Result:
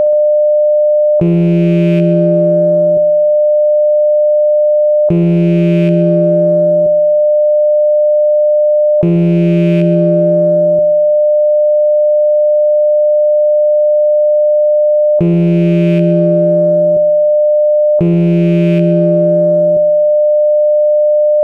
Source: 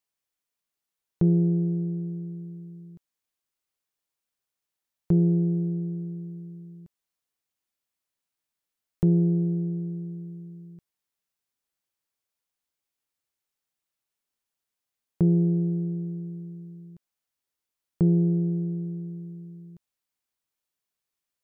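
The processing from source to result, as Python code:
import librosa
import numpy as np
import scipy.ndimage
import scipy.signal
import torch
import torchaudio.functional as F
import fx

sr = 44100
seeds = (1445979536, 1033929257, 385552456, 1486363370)

p1 = fx.rattle_buzz(x, sr, strikes_db=-29.0, level_db=-32.0)
p2 = fx.dynamic_eq(p1, sr, hz=120.0, q=0.96, threshold_db=-36.0, ratio=4.0, max_db=5)
p3 = fx.leveller(p2, sr, passes=1)
p4 = fx.small_body(p3, sr, hz=(370.0,), ring_ms=50, db=15)
p5 = p4 + 10.0 ** (-29.0 / 20.0) * np.sin(2.0 * np.pi * 600.0 * np.arange(len(p4)) / sr)
p6 = p5 + fx.echo_heads(p5, sr, ms=65, heads='first and second', feedback_pct=49, wet_db=-16.0, dry=0)
p7 = fx.env_flatten(p6, sr, amount_pct=100)
y = F.gain(torch.from_numpy(p7), 2.0).numpy()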